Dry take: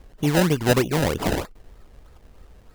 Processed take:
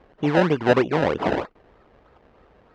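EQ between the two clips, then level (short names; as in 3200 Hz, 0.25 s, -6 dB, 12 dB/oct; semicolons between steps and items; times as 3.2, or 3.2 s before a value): HPF 570 Hz 6 dB/oct; tape spacing loss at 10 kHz 38 dB; +8.5 dB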